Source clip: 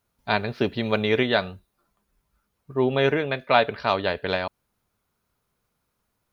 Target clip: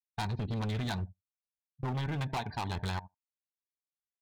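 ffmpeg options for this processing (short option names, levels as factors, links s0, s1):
-filter_complex "[0:a]agate=range=0.0282:threshold=0.0141:ratio=16:detection=peak,bandreject=f=304.5:t=h:w=4,bandreject=f=609:t=h:w=4,bandreject=f=913.5:t=h:w=4,asplit=2[s0][s1];[s1]adelay=120,lowpass=f=950:p=1,volume=0.119,asplit=2[s2][s3];[s3]adelay=120,lowpass=f=950:p=1,volume=0.28[s4];[s2][s4]amix=inputs=2:normalize=0[s5];[s0][s5]amix=inputs=2:normalize=0,aresample=16000,aresample=44100,afftdn=nr=31:nf=-40,firequalizer=gain_entry='entry(100,0);entry(560,-28);entry(810,0);entry(1200,-12);entry(2700,-23);entry(5600,3)':delay=0.05:min_phase=1,atempo=1.5,asplit=2[s6][s7];[s7]adynamicsmooth=sensitivity=0.5:basefreq=620,volume=1.41[s8];[s6][s8]amix=inputs=2:normalize=0,asuperstop=centerf=1300:order=12:qfactor=5.2,equalizer=f=2800:w=0.64:g=13,acompressor=threshold=0.0224:ratio=20,asoftclip=type=hard:threshold=0.0112,volume=2.66"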